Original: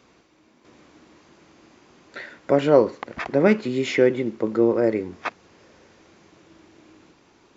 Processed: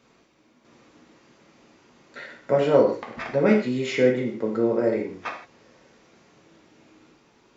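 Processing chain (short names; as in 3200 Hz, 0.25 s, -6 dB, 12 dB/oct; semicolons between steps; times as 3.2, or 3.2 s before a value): non-linear reverb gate 0.19 s falling, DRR -1 dB; gain -5.5 dB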